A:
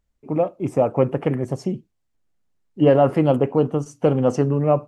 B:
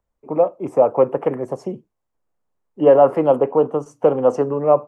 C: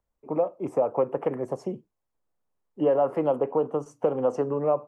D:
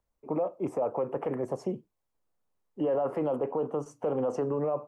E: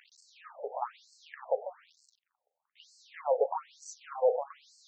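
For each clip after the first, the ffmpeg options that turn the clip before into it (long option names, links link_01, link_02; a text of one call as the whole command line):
ffmpeg -i in.wav -filter_complex "[0:a]acrossover=split=170|350|4000[link_01][link_02][link_03][link_04];[link_01]acompressor=threshold=-37dB:ratio=6[link_05];[link_05][link_02][link_03][link_04]amix=inputs=4:normalize=0,equalizer=frequency=500:width_type=o:width=1:gain=8,equalizer=frequency=1000:width_type=o:width=1:gain=10,equalizer=frequency=4000:width_type=o:width=1:gain=-4,volume=-5dB" out.wav
ffmpeg -i in.wav -af "acompressor=threshold=-17dB:ratio=2.5,volume=-4.5dB" out.wav
ffmpeg -i in.wav -af "alimiter=limit=-21.5dB:level=0:latency=1:release=14" out.wav
ffmpeg -i in.wav -af "aeval=exprs='val(0)+0.5*0.00501*sgn(val(0))':channel_layout=same,afftfilt=real='re*between(b*sr/1024,590*pow(6000/590,0.5+0.5*sin(2*PI*1.1*pts/sr))/1.41,590*pow(6000/590,0.5+0.5*sin(2*PI*1.1*pts/sr))*1.41)':imag='im*between(b*sr/1024,590*pow(6000/590,0.5+0.5*sin(2*PI*1.1*pts/sr))/1.41,590*pow(6000/590,0.5+0.5*sin(2*PI*1.1*pts/sr))*1.41)':win_size=1024:overlap=0.75,volume=5.5dB" out.wav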